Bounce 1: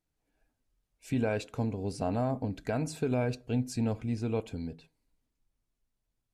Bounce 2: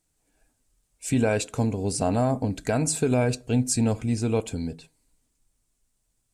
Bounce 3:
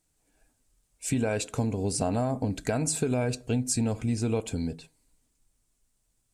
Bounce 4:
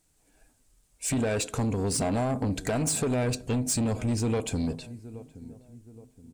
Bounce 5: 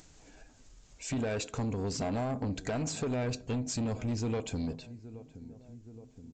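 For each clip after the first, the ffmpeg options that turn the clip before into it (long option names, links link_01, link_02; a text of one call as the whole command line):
ffmpeg -i in.wav -af "equalizer=frequency=8300:width=1.2:gain=14,volume=7dB" out.wav
ffmpeg -i in.wav -af "acompressor=threshold=-23dB:ratio=6" out.wav
ffmpeg -i in.wav -filter_complex "[0:a]asplit=2[link_01][link_02];[link_02]adelay=822,lowpass=frequency=990:poles=1,volume=-20dB,asplit=2[link_03][link_04];[link_04]adelay=822,lowpass=frequency=990:poles=1,volume=0.46,asplit=2[link_05][link_06];[link_06]adelay=822,lowpass=frequency=990:poles=1,volume=0.46[link_07];[link_01][link_03][link_05][link_07]amix=inputs=4:normalize=0,asoftclip=type=tanh:threshold=-27.5dB,volume=5dB" out.wav
ffmpeg -i in.wav -af "aresample=16000,aresample=44100,acompressor=mode=upward:threshold=-36dB:ratio=2.5,volume=-5.5dB" out.wav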